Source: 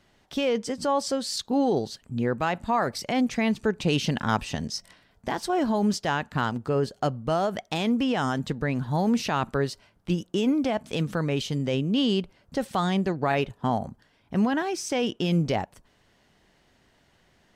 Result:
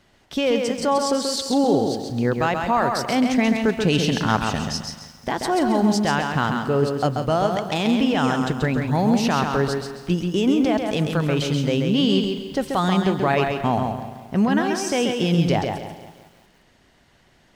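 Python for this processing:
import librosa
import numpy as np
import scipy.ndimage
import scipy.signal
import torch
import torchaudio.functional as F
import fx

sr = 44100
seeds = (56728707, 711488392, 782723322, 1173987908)

p1 = x + fx.echo_feedback(x, sr, ms=134, feedback_pct=32, wet_db=-5.0, dry=0)
p2 = fx.echo_crushed(p1, sr, ms=173, feedback_pct=55, bits=8, wet_db=-14)
y = F.gain(torch.from_numpy(p2), 4.0).numpy()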